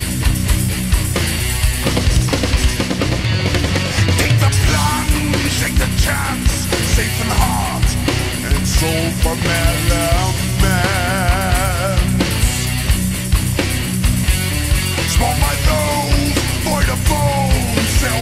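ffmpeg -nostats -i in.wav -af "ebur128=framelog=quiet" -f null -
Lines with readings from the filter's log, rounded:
Integrated loudness:
  I:         -16.1 LUFS
  Threshold: -26.1 LUFS
Loudness range:
  LRA:         1.2 LU
  Threshold: -36.1 LUFS
  LRA low:   -16.6 LUFS
  LRA high:  -15.4 LUFS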